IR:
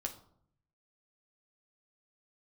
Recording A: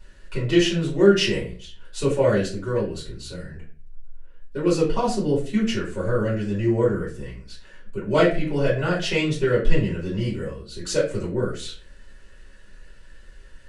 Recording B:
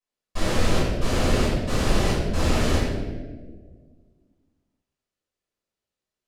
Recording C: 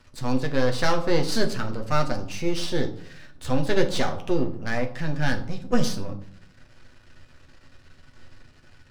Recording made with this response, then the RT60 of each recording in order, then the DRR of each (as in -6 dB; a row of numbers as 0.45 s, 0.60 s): C; no single decay rate, 1.6 s, 0.65 s; -8.5 dB, -12.0 dB, 3.0 dB